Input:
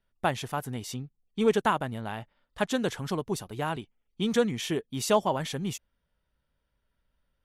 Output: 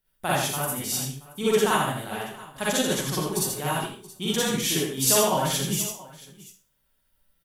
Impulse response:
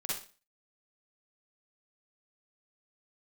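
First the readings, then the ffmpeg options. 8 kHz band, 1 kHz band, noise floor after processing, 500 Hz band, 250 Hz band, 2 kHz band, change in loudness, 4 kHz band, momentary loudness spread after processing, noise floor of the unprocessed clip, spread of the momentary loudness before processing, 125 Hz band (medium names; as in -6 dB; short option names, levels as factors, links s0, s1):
+14.5 dB, +3.0 dB, -71 dBFS, +2.5 dB, +2.0 dB, +5.0 dB, +5.0 dB, +9.0 dB, 13 LU, -79 dBFS, 13 LU, +4.0 dB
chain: -filter_complex "[0:a]aemphasis=mode=production:type=75fm,aecho=1:1:83|677:0.501|0.106[s0];[1:a]atrim=start_sample=2205[s1];[s0][s1]afir=irnorm=-1:irlink=0"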